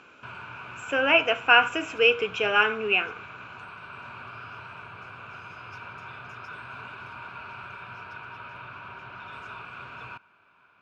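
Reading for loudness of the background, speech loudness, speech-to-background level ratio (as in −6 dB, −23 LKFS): −41.0 LKFS, −21.5 LKFS, 19.5 dB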